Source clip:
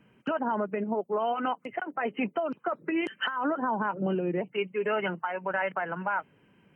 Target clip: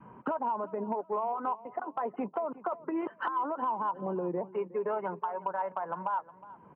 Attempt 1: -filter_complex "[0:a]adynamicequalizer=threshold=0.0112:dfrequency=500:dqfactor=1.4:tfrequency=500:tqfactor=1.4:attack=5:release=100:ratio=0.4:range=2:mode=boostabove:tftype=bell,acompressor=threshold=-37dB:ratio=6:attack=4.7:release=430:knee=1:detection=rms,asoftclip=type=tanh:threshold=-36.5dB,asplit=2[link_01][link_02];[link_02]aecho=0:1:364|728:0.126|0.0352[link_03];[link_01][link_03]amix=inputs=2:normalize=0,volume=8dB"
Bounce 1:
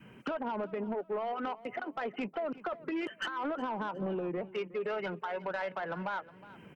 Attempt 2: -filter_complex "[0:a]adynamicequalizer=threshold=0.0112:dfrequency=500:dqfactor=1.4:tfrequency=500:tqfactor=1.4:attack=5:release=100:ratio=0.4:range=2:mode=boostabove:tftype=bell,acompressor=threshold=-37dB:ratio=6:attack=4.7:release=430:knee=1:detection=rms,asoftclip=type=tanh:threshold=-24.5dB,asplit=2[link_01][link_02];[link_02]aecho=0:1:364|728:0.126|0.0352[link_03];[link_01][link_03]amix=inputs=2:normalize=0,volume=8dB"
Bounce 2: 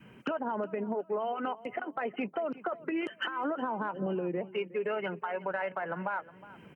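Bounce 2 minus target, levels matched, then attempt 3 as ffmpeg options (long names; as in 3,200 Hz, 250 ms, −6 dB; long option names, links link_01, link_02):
1,000 Hz band −3.5 dB
-filter_complex "[0:a]adynamicequalizer=threshold=0.0112:dfrequency=500:dqfactor=1.4:tfrequency=500:tqfactor=1.4:attack=5:release=100:ratio=0.4:range=2:mode=boostabove:tftype=bell,lowpass=frequency=1000:width_type=q:width=5.4,acompressor=threshold=-37dB:ratio=6:attack=4.7:release=430:knee=1:detection=rms,asoftclip=type=tanh:threshold=-24.5dB,asplit=2[link_01][link_02];[link_02]aecho=0:1:364|728:0.126|0.0352[link_03];[link_01][link_03]amix=inputs=2:normalize=0,volume=8dB"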